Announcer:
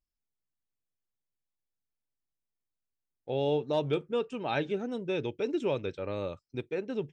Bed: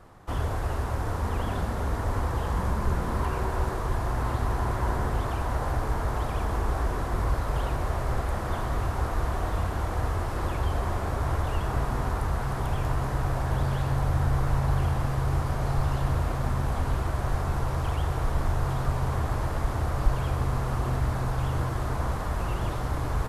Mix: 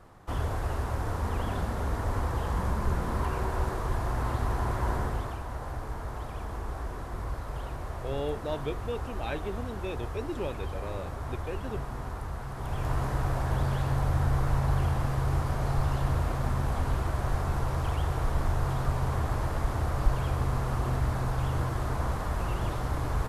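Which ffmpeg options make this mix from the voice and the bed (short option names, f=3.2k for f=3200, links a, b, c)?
-filter_complex "[0:a]adelay=4750,volume=-4.5dB[a];[1:a]volume=5dB,afade=t=out:st=4.96:d=0.46:silence=0.473151,afade=t=in:st=12.55:d=0.41:silence=0.446684[b];[a][b]amix=inputs=2:normalize=0"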